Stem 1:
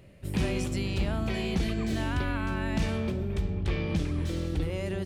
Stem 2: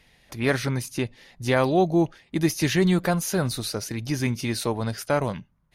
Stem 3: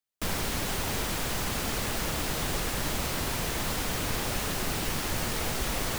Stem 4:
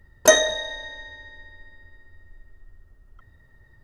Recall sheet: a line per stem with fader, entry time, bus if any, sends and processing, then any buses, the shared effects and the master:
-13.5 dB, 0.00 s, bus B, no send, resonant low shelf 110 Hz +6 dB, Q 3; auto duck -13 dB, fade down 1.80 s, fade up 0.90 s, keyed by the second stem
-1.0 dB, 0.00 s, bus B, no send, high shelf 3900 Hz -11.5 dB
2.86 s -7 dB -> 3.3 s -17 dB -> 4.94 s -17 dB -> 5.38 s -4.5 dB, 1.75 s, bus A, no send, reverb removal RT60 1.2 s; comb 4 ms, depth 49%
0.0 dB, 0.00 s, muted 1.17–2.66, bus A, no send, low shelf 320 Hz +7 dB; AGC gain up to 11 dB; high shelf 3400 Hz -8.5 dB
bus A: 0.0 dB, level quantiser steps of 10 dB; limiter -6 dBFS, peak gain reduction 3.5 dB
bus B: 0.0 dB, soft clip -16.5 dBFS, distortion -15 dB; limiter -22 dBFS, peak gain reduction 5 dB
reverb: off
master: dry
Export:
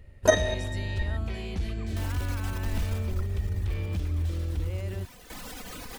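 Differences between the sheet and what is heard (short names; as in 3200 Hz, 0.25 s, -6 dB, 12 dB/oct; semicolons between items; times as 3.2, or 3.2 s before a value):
stem 1 -13.5 dB -> -6.0 dB; stem 2: muted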